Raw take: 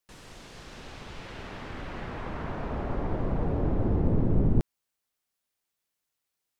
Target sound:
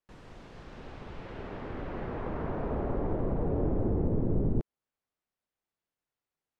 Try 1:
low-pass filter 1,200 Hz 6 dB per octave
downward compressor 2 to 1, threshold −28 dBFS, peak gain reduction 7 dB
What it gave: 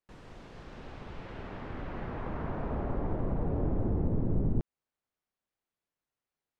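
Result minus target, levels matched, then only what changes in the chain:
500 Hz band −2.5 dB
add after downward compressor: dynamic equaliser 430 Hz, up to +5 dB, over −49 dBFS, Q 1.2

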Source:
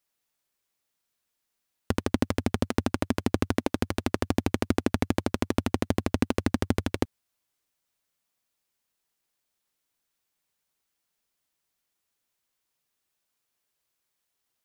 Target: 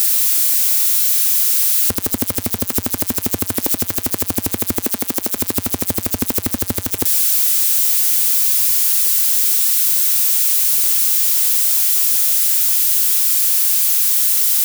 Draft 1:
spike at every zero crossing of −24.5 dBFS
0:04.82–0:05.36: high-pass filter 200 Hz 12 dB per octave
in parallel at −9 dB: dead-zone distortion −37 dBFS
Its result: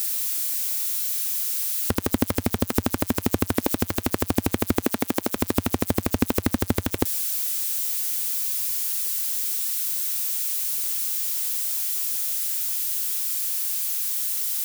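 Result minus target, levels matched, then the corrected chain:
spike at every zero crossing: distortion −11 dB
spike at every zero crossing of −13.5 dBFS
0:04.82–0:05.36: high-pass filter 200 Hz 12 dB per octave
in parallel at −9 dB: dead-zone distortion −37 dBFS

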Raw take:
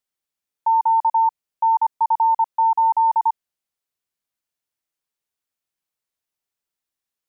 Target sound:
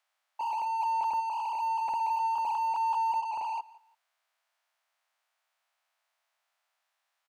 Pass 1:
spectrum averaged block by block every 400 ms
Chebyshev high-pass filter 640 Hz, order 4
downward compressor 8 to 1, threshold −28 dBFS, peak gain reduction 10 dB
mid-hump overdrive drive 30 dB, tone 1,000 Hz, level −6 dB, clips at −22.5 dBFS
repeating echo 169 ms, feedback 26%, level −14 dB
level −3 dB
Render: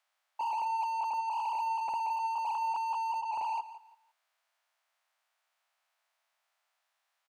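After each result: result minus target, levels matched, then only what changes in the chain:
downward compressor: peak gain reduction +10 dB; echo-to-direct +6.5 dB
remove: downward compressor 8 to 1, threshold −28 dBFS, peak gain reduction 10 dB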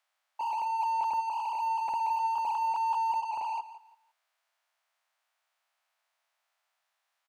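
echo-to-direct +6.5 dB
change: repeating echo 169 ms, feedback 26%, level −20.5 dB

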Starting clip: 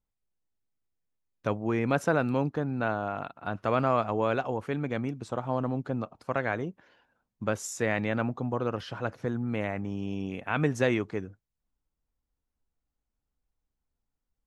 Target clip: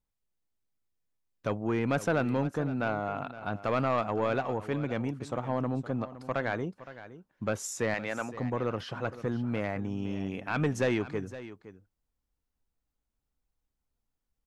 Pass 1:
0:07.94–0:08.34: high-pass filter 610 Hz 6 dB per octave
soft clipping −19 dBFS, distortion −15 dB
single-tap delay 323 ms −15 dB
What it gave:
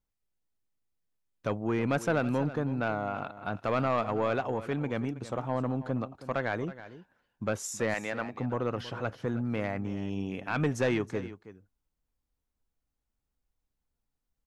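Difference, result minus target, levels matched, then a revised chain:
echo 192 ms early
0:07.94–0:08.34: high-pass filter 610 Hz 6 dB per octave
soft clipping −19 dBFS, distortion −15 dB
single-tap delay 515 ms −15 dB

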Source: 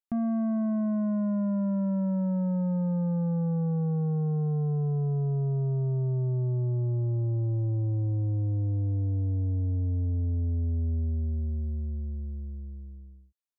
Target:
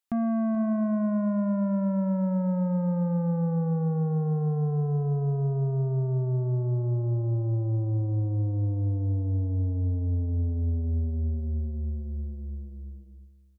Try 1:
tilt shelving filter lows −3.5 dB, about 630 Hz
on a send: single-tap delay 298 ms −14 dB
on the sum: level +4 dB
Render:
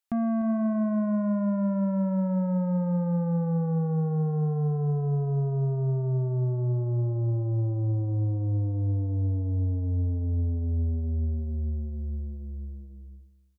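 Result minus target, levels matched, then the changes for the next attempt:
echo 135 ms early
change: single-tap delay 433 ms −14 dB

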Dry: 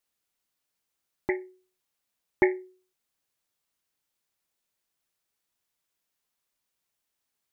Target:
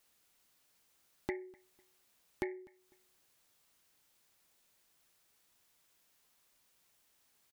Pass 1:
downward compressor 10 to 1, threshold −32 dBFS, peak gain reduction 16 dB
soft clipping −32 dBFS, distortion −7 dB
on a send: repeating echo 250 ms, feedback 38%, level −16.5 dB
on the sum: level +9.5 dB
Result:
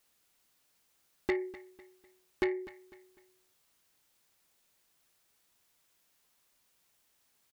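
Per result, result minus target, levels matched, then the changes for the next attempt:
downward compressor: peak gain reduction −11 dB; echo-to-direct +9 dB
change: downward compressor 10 to 1, threshold −44 dBFS, peak gain reduction 26.5 dB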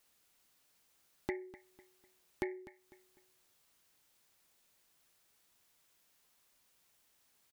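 echo-to-direct +9 dB
change: repeating echo 250 ms, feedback 38%, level −25.5 dB

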